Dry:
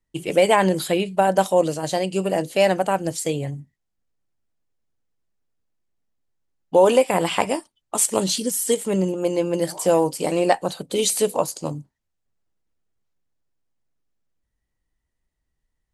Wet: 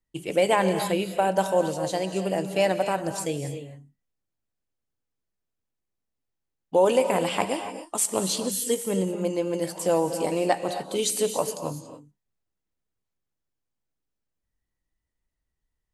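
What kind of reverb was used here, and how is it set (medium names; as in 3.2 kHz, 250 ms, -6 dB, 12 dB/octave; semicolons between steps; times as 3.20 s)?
gated-style reverb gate 310 ms rising, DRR 8 dB; trim -5 dB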